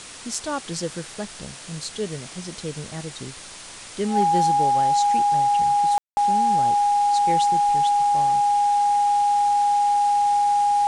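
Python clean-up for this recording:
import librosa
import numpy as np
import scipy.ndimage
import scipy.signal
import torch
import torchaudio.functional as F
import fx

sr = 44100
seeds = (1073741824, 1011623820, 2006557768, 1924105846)

y = fx.fix_declip(x, sr, threshold_db=-12.0)
y = fx.notch(y, sr, hz=820.0, q=30.0)
y = fx.fix_ambience(y, sr, seeds[0], print_start_s=3.42, print_end_s=3.92, start_s=5.98, end_s=6.17)
y = fx.noise_reduce(y, sr, print_start_s=3.42, print_end_s=3.92, reduce_db=28.0)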